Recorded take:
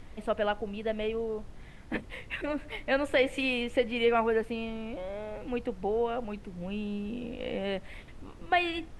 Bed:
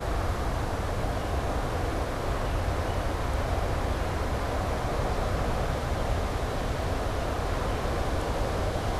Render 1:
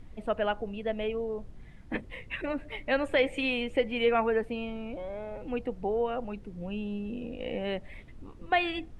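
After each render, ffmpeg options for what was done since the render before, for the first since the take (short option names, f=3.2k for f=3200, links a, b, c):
-af "afftdn=nr=8:nf=-48"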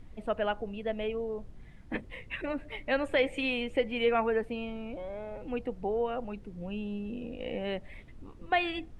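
-af "volume=-1.5dB"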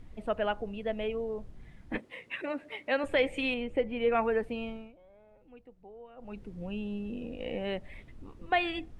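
-filter_complex "[0:a]asettb=1/sr,asplit=3[a][b][c];[a]atrim=end=1.984[d];[b]atrim=start=1.98:end=3.04,asetpts=PTS-STARTPTS,afade=t=in:d=0.004:c=qsin,afade=t=out:st=1.056:d=0.004:c=qsin,highpass=250[e];[c]atrim=start=3.036[f];[d][e]acrossfade=d=0.004:c1=hsin:c2=qsin[g];[g][f]acrossfade=d=0.004:c1=qsin:c2=hsin,asettb=1/sr,asplit=3[h][i][j];[h]atrim=end=3.544[k];[i]atrim=start=3.54:end=4.12,asetpts=PTS-STARTPTS,afade=t=in:d=0.004:c=qsin,afade=t=out:st=0.576:d=0.004:c=qsin,highshelf=f=2.3k:g=-12[l];[j]atrim=start=4.116[m];[k][l]acrossfade=d=0.004:c1=hsin:c2=qsin[n];[n][m]acrossfade=d=0.004:c1=qsin:c2=hsin,asplit=3[o][p][q];[o]atrim=end=4.93,asetpts=PTS-STARTPTS,afade=t=out:st=4.68:d=0.25:silence=0.112202[r];[p]atrim=start=4.93:end=6.16,asetpts=PTS-STARTPTS,volume=-19dB[s];[q]atrim=start=6.16,asetpts=PTS-STARTPTS,afade=t=in:d=0.25:silence=0.112202[t];[r][s][t]concat=n=3:v=0:a=1"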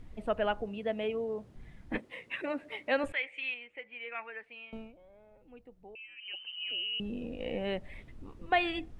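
-filter_complex "[0:a]asettb=1/sr,asplit=3[a][b][c];[a]atrim=end=0.664[d];[b]atrim=start=0.66:end=1.56,asetpts=PTS-STARTPTS,afade=t=in:d=0.004:c=qsin,afade=t=out:st=0.896:d=0.004:c=qsin,highpass=110[e];[c]atrim=start=1.556[f];[d][e]acrossfade=d=0.004:c1=hsin:c2=qsin[g];[g][f]acrossfade=d=0.004:c1=qsin:c2=hsin,asettb=1/sr,asplit=3[h][i][j];[h]atrim=end=3.124[k];[i]atrim=start=3.12:end=4.73,asetpts=PTS-STARTPTS,afade=t=in:d=0.004:c=qsin,afade=t=out:st=1.606:d=0.004:c=qsin,bandpass=f=2.2k:t=q:w=2.5[l];[j]atrim=start=4.726[m];[k][l]acrossfade=d=0.004:c1=hsin:c2=qsin[n];[n][m]acrossfade=d=0.004:c1=qsin:c2=hsin,asettb=1/sr,asplit=3[o][p][q];[o]atrim=end=5.954[r];[p]atrim=start=5.95:end=7,asetpts=PTS-STARTPTS,afade=t=in:d=0.004:c=qsin,afade=t=out:st=1.046:d=0.004:c=qsin,lowpass=f=2.6k:t=q:w=0.5098,lowpass=f=2.6k:t=q:w=0.6013,lowpass=f=2.6k:t=q:w=0.9,lowpass=f=2.6k:t=q:w=2.563,afreqshift=-3100[s];[q]atrim=start=6.996[t];[r][s]acrossfade=d=0.004:c1=hsin:c2=qsin[u];[u][t]acrossfade=d=0.004:c1=qsin:c2=hsin"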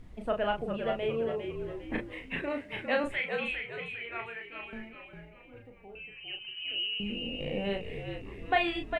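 -filter_complex "[0:a]asplit=2[a][b];[b]adelay=35,volume=-5dB[c];[a][c]amix=inputs=2:normalize=0,asplit=2[d][e];[e]asplit=5[f][g][h][i][j];[f]adelay=403,afreqshift=-56,volume=-6.5dB[k];[g]adelay=806,afreqshift=-112,volume=-13.8dB[l];[h]adelay=1209,afreqshift=-168,volume=-21.2dB[m];[i]adelay=1612,afreqshift=-224,volume=-28.5dB[n];[j]adelay=2015,afreqshift=-280,volume=-35.8dB[o];[k][l][m][n][o]amix=inputs=5:normalize=0[p];[d][p]amix=inputs=2:normalize=0"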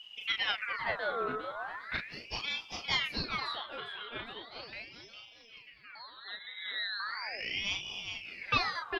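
-af "aeval=exprs='val(0)*sin(2*PI*1900*n/s+1900*0.55/0.38*sin(2*PI*0.38*n/s))':c=same"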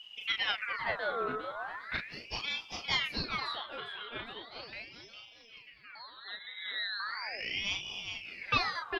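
-af anull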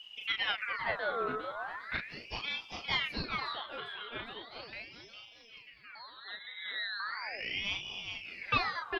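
-filter_complex "[0:a]acrossover=split=4500[a][b];[b]acompressor=threshold=-59dB:ratio=4:attack=1:release=60[c];[a][c]amix=inputs=2:normalize=0"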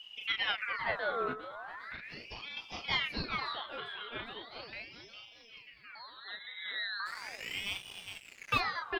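-filter_complex "[0:a]asettb=1/sr,asplit=3[a][b][c];[a]atrim=end=1.334[d];[b]atrim=start=1.33:end=2.57,asetpts=PTS-STARTPTS,afade=t=in:d=0.004:c=qsin,afade=t=out:st=1.236:d=0.004:c=qsin,acompressor=threshold=-40dB:ratio=6:attack=3.2:release=140:knee=1:detection=peak[e];[c]atrim=start=2.566[f];[d][e]acrossfade=d=0.004:c1=hsin:c2=qsin[g];[g][f]acrossfade=d=0.004:c1=qsin:c2=hsin,asplit=3[h][i][j];[h]afade=t=out:st=7.05:d=0.02[k];[i]aeval=exprs='sgn(val(0))*max(abs(val(0))-0.00596,0)':c=same,afade=t=in:st=7.05:d=0.02,afade=t=out:st=8.59:d=0.02[l];[j]afade=t=in:st=8.59:d=0.02[m];[k][l][m]amix=inputs=3:normalize=0"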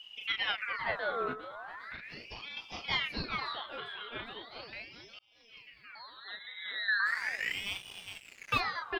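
-filter_complex "[0:a]asettb=1/sr,asplit=3[a][b][c];[a]atrim=end=6.884[d];[b]atrim=start=6.88:end=7.52,asetpts=PTS-STARTPTS,afade=t=in:d=0.004:c=qsin,afade=t=out:st=0.636:d=0.004:c=qsin,equalizer=f=1.8k:t=o:w=0.55:g=14.5[e];[c]atrim=start=7.516[f];[d][e]acrossfade=d=0.004:c1=hsin:c2=qsin[g];[g][f]acrossfade=d=0.004:c1=qsin:c2=hsin,asplit=2[h][i];[h]atrim=end=5.19,asetpts=PTS-STARTPTS,afade=t=out:st=5.186:d=0.004:c=hsin[j];[i]atrim=start=5.19,asetpts=PTS-STARTPTS,afade=t=in:d=0.41[k];[j][k]concat=n=2:v=0:a=1"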